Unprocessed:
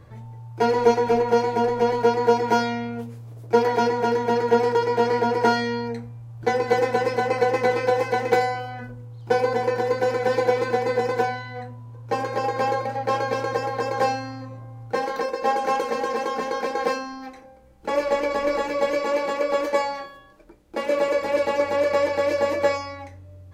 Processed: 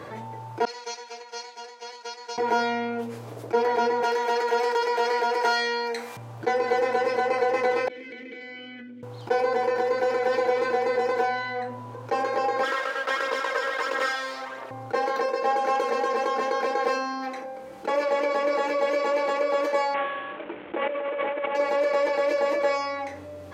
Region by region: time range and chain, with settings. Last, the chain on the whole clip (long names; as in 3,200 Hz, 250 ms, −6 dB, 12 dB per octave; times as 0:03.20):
0:00.65–0:02.38: resonant band-pass 5,700 Hz, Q 1.8 + downward expander −36 dBFS
0:04.03–0:06.17: high-pass filter 300 Hz + spectral tilt +2.5 dB per octave + one half of a high-frequency compander encoder only
0:07.88–0:09.03: formant filter i + downward compressor 10 to 1, threshold −50 dBFS
0:12.63–0:14.71: lower of the sound and its delayed copy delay 0.56 ms + high-pass filter 560 Hz + phase shifter 1.5 Hz, delay 2.2 ms, feedback 39%
0:19.94–0:21.55: variable-slope delta modulation 16 kbit/s + compressor whose output falls as the input rises −31 dBFS
whole clip: high-pass filter 330 Hz 12 dB per octave; high-shelf EQ 6,100 Hz −8 dB; envelope flattener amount 50%; level −5 dB